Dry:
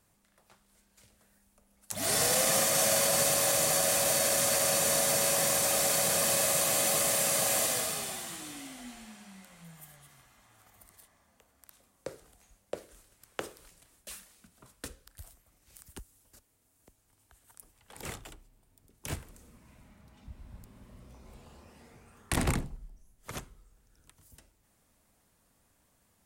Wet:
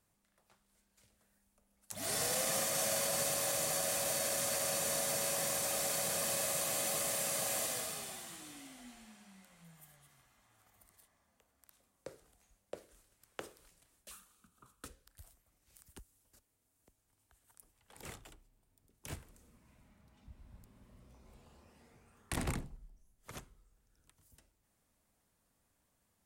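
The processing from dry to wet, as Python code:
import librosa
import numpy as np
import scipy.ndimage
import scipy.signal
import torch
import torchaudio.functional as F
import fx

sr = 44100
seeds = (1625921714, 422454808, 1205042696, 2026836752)

y = fx.graphic_eq_31(x, sr, hz=(630, 1250, 2000, 5000), db=(-8, 12, -10, -6), at=(14.11, 14.85))
y = y * 10.0 ** (-8.0 / 20.0)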